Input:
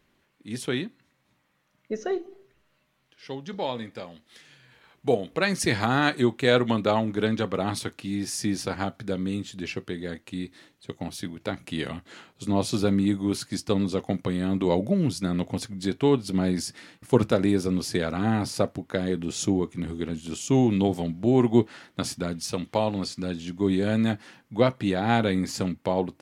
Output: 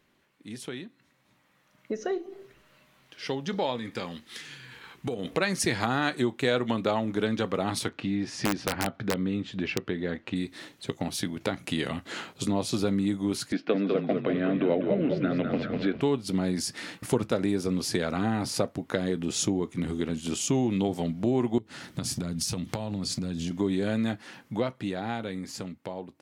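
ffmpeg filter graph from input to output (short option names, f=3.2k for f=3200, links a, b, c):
-filter_complex "[0:a]asettb=1/sr,asplit=3[a][b][c];[a]atrim=end=3.764[d];[b]atrim=start=3.76:end=5.25,asetpts=PTS-STARTPTS,afade=t=in:d=0.004:c=qsin,afade=t=out:st=1.486:d=0.004:c=qsin,equalizer=f=630:t=o:w=0.48:g=-10.5,acompressor=threshold=-33dB:ratio=6:attack=3.2:release=140:knee=1:detection=peak[e];[c]atrim=start=5.246[f];[d][e]acrossfade=d=0.004:c1=hsin:c2=qsin[g];[g][f]acrossfade=d=0.004:c1=qsin:c2=hsin,asettb=1/sr,asplit=3[h][i][j];[h]atrim=end=7.884[k];[i]atrim=start=7.88:end=10.36,asetpts=PTS-STARTPTS,afade=t=in:d=0.004:c=qsin,afade=t=out:st=2.476:d=0.004:c=qsin,lowpass=3k,aeval=exprs='(mod(7.5*val(0)+1,2)-1)/7.5':c=same[l];[j]atrim=start=10.356[m];[k][l]acrossfade=d=0.004:c1=hsin:c2=qsin[n];[n][m]acrossfade=d=0.004:c1=qsin:c2=hsin,asettb=1/sr,asplit=3[o][p][q];[o]atrim=end=13.524[r];[p]atrim=start=13.52:end=16.01,asetpts=PTS-STARTPTS,afade=t=in:d=0.004:c=qsin,afade=t=out:st=2.486:d=0.004:c=qsin,highpass=f=190:w=0.5412,highpass=f=190:w=1.3066,equalizer=f=290:t=q:w=4:g=4,equalizer=f=460:t=q:w=4:g=4,equalizer=f=650:t=q:w=4:g=8,equalizer=f=930:t=q:w=4:g=-8,equalizer=f=1.5k:t=q:w=4:g=8,equalizer=f=2.5k:t=q:w=4:g=5,lowpass=f=3.2k:w=0.5412,lowpass=f=3.2k:w=1.3066,asplit=7[s][t][u][v][w][x][y];[t]adelay=199,afreqshift=-32,volume=-6dB[z];[u]adelay=398,afreqshift=-64,volume=-12.2dB[aa];[v]adelay=597,afreqshift=-96,volume=-18.4dB[ab];[w]adelay=796,afreqshift=-128,volume=-24.6dB[ac];[x]adelay=995,afreqshift=-160,volume=-30.8dB[ad];[y]adelay=1194,afreqshift=-192,volume=-37dB[ae];[s][z][aa][ab][ac][ad][ae]amix=inputs=7:normalize=0,atrim=end_sample=109809[af];[q]atrim=start=16.006[ag];[r][af]acrossfade=d=0.004:c1=hsin:c2=qsin[ah];[ah][ag]acrossfade=d=0.004:c1=qsin:c2=hsin,asettb=1/sr,asplit=3[ai][aj][ak];[ai]atrim=end=21.584[al];[aj]atrim=start=21.58:end=23.51,asetpts=PTS-STARTPTS,afade=t=in:d=0.004:c=qsin,afade=t=out:st=1.926:d=0.004:c=qsin,bass=f=250:g=12,treble=f=4k:g=6,acompressor=threshold=-31dB:ratio=12:attack=3.2:release=140:knee=1:detection=peak[am];[ak]atrim=start=23.506[an];[al][am]acrossfade=d=0.004:c1=hsin:c2=qsin[ao];[ao][an]acrossfade=d=0.004:c1=qsin:c2=hsin,acompressor=threshold=-39dB:ratio=2.5,lowshelf=f=71:g=-8.5,dynaudnorm=f=280:g=13:m=10dB"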